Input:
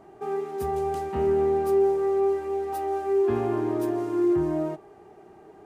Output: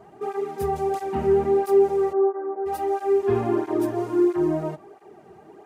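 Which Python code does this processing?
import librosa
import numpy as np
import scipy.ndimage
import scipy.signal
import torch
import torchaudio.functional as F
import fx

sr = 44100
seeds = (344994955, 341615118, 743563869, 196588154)

y = fx.ellip_bandpass(x, sr, low_hz=260.0, high_hz=1500.0, order=3, stop_db=40, at=(2.12, 2.65), fade=0.02)
y = fx.flanger_cancel(y, sr, hz=1.5, depth_ms=3.8)
y = y * librosa.db_to_amplitude(5.5)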